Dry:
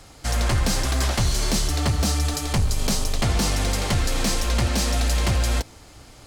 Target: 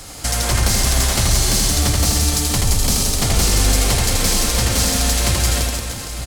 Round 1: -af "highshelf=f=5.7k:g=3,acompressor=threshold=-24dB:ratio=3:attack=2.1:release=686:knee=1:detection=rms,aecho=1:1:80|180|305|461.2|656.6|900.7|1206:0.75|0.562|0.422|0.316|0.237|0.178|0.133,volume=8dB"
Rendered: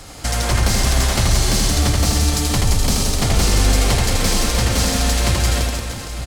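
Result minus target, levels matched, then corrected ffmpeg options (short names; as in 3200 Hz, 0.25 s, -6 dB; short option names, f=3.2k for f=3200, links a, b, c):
8000 Hz band -3.0 dB
-af "highshelf=f=5.7k:g=11.5,acompressor=threshold=-24dB:ratio=3:attack=2.1:release=686:knee=1:detection=rms,aecho=1:1:80|180|305|461.2|656.6|900.7|1206:0.75|0.562|0.422|0.316|0.237|0.178|0.133,volume=8dB"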